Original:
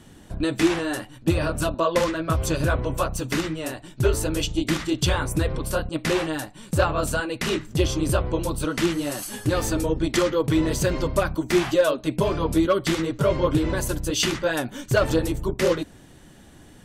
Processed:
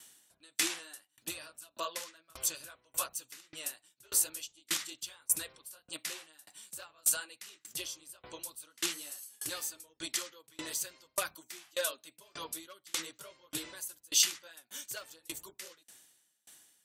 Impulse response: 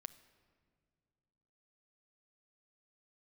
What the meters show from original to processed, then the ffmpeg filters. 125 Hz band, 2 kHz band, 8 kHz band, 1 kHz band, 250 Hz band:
-37.0 dB, -14.0 dB, -1.0 dB, -18.5 dB, -28.0 dB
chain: -af "aderivative,aeval=exprs='val(0)*pow(10,-31*if(lt(mod(1.7*n/s,1),2*abs(1.7)/1000),1-mod(1.7*n/s,1)/(2*abs(1.7)/1000),(mod(1.7*n/s,1)-2*abs(1.7)/1000)/(1-2*abs(1.7)/1000))/20)':c=same,volume=2.11"

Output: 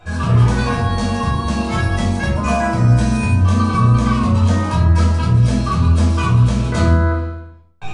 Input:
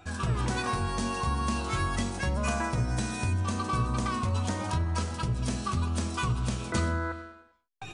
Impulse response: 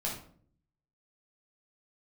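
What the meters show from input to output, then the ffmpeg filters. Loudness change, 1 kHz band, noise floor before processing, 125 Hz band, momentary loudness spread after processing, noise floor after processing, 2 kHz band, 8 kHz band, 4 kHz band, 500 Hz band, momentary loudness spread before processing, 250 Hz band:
+14.5 dB, +10.5 dB, -54 dBFS, +16.5 dB, 5 LU, -35 dBFS, +10.0 dB, +5.0 dB, +8.0 dB, +12.5 dB, 2 LU, +15.0 dB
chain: -filter_complex "[0:a]highshelf=f=6400:g=-8[s0];[1:a]atrim=start_sample=2205[s1];[s0][s1]afir=irnorm=-1:irlink=0,volume=2.37"

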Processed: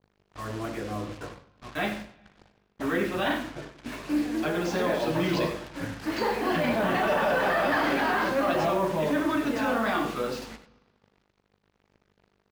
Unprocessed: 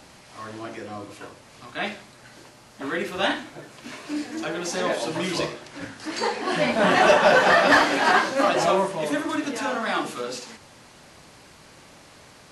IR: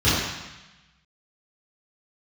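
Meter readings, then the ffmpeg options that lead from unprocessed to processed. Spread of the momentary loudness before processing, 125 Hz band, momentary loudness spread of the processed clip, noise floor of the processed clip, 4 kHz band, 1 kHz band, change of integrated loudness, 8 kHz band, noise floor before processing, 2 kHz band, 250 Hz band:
22 LU, +1.5 dB, 14 LU, -72 dBFS, -7.5 dB, -5.5 dB, -5.0 dB, -9.5 dB, -50 dBFS, -6.5 dB, 0.0 dB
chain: -filter_complex "[0:a]lowpass=5700,aemphasis=mode=reproduction:type=50kf,agate=range=0.0224:threshold=0.01:ratio=3:detection=peak,lowshelf=f=300:g=4.5,alimiter=limit=0.126:level=0:latency=1:release=18,aeval=exprs='val(0)+0.00316*(sin(2*PI*50*n/s)+sin(2*PI*2*50*n/s)/2+sin(2*PI*3*50*n/s)/3+sin(2*PI*4*50*n/s)/4+sin(2*PI*5*50*n/s)/5)':c=same,acrusher=bits=6:mix=0:aa=0.5,aecho=1:1:95:0.237,asplit=2[s0][s1];[1:a]atrim=start_sample=2205,asetrate=39690,aresample=44100[s2];[s1][s2]afir=irnorm=-1:irlink=0,volume=0.0133[s3];[s0][s3]amix=inputs=2:normalize=0"

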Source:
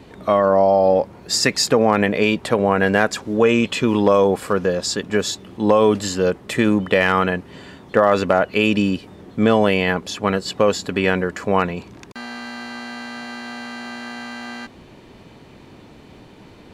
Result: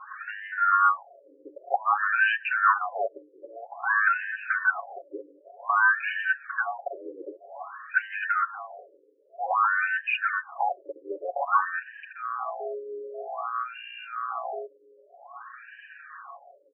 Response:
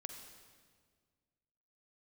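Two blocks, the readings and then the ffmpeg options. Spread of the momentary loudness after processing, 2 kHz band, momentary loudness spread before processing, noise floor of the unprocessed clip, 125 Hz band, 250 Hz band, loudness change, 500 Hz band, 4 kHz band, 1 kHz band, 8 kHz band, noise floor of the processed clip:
21 LU, -0.5 dB, 16 LU, -45 dBFS, under -40 dB, -32.0 dB, -8.0 dB, -20.0 dB, -19.0 dB, -3.0 dB, under -40 dB, -59 dBFS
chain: -filter_complex "[0:a]afftfilt=real='real(if(between(b,1,1012),(2*floor((b-1)/92)+1)*92-b,b),0)':imag='imag(if(between(b,1,1012),(2*floor((b-1)/92)+1)*92-b,b),0)*if(between(b,1,1012),-1,1)':win_size=2048:overlap=0.75,asplit=3[s0][s1][s2];[s0]bandpass=f=730:t=q:w=8,volume=1[s3];[s1]bandpass=f=1090:t=q:w=8,volume=0.501[s4];[s2]bandpass=f=2440:t=q:w=8,volume=0.355[s5];[s3][s4][s5]amix=inputs=3:normalize=0,highshelf=f=2700:g=5,bandreject=f=60:t=h:w=6,bandreject=f=120:t=h:w=6,bandreject=f=180:t=h:w=6,bandreject=f=240:t=h:w=6,bandreject=f=300:t=h:w=6,aecho=1:1:7.2:0.99,acompressor=threshold=0.0316:ratio=4,adynamicequalizer=threshold=0.00112:dfrequency=360:dqfactor=3:tfrequency=360:tqfactor=3:attack=5:release=100:ratio=0.375:range=3:mode=boostabove:tftype=bell,asplit=2[s6][s7];[s7]highpass=f=720:p=1,volume=5.01,asoftclip=type=tanh:threshold=0.119[s8];[s6][s8]amix=inputs=2:normalize=0,lowpass=f=2300:p=1,volume=0.501,aphaser=in_gain=1:out_gain=1:delay=3.9:decay=0.27:speed=1.1:type=sinusoidal,aecho=1:1:399:0.0841,afftfilt=real='re*between(b*sr/1024,380*pow(2200/380,0.5+0.5*sin(2*PI*0.52*pts/sr))/1.41,380*pow(2200/380,0.5+0.5*sin(2*PI*0.52*pts/sr))*1.41)':imag='im*between(b*sr/1024,380*pow(2200/380,0.5+0.5*sin(2*PI*0.52*pts/sr))/1.41,380*pow(2200/380,0.5+0.5*sin(2*PI*0.52*pts/sr))*1.41)':win_size=1024:overlap=0.75,volume=2.37"

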